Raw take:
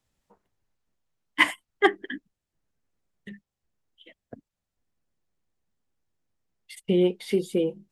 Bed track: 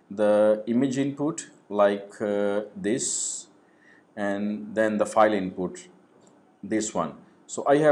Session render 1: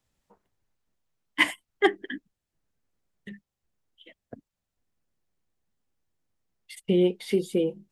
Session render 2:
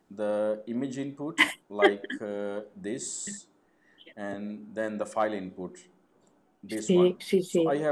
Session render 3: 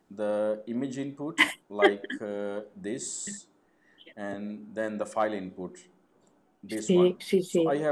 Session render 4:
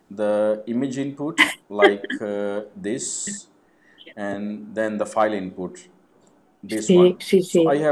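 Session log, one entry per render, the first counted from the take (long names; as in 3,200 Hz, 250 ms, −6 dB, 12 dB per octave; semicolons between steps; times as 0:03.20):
dynamic equaliser 1,200 Hz, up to −6 dB, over −37 dBFS, Q 1.4
mix in bed track −8.5 dB
no processing that can be heard
level +8 dB; brickwall limiter −2 dBFS, peak gain reduction 2 dB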